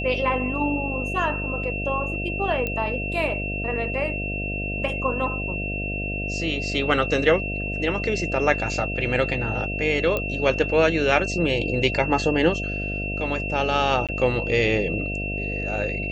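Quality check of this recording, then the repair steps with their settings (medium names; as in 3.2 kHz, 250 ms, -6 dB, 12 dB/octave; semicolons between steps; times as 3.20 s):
buzz 50 Hz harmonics 14 -30 dBFS
whine 2.7 kHz -29 dBFS
2.67 s: pop -14 dBFS
10.17 s: pop -12 dBFS
14.07–14.09 s: dropout 17 ms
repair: de-click; de-hum 50 Hz, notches 14; band-stop 2.7 kHz, Q 30; interpolate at 14.07 s, 17 ms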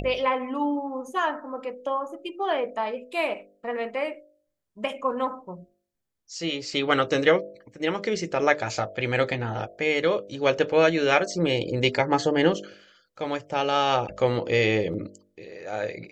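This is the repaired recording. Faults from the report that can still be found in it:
nothing left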